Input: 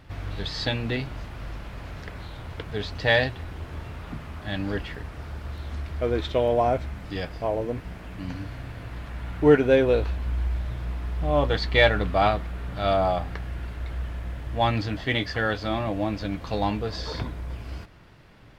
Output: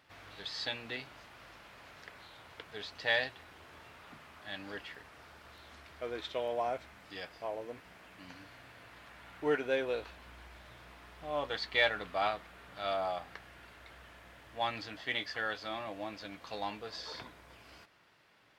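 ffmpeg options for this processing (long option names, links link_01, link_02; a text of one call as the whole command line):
ffmpeg -i in.wav -af "highpass=frequency=930:poles=1,volume=-7dB" out.wav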